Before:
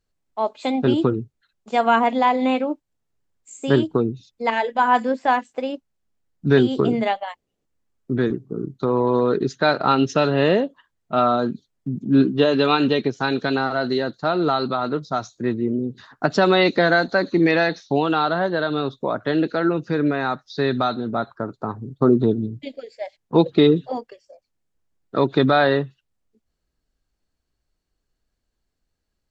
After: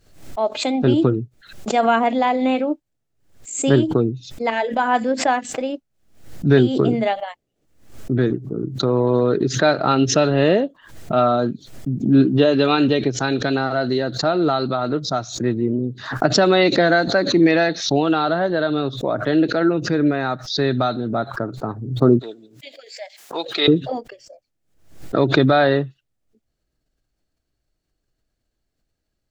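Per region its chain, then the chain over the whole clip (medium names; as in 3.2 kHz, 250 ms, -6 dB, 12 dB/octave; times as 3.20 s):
22.19–23.68 s: high-pass 960 Hz + treble shelf 4.3 kHz +5.5 dB
whole clip: graphic EQ with 31 bands 125 Hz +6 dB, 315 Hz +4 dB, 630 Hz +4 dB, 1 kHz -5 dB; swell ahead of each attack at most 99 dB/s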